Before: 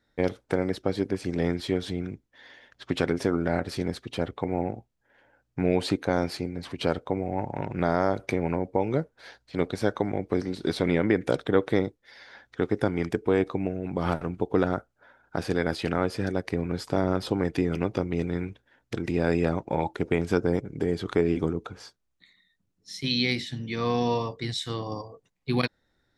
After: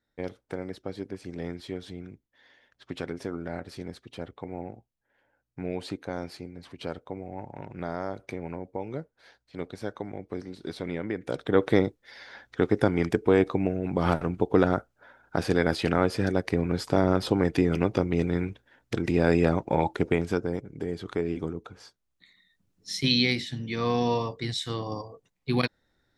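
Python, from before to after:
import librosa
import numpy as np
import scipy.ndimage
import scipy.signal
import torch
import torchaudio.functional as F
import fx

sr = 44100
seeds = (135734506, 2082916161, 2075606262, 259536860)

y = fx.gain(x, sr, db=fx.line((11.22, -9.0), (11.64, 2.5), (20.01, 2.5), (20.5, -5.5), (21.71, -5.5), (22.93, 6.5), (23.35, 0.0)))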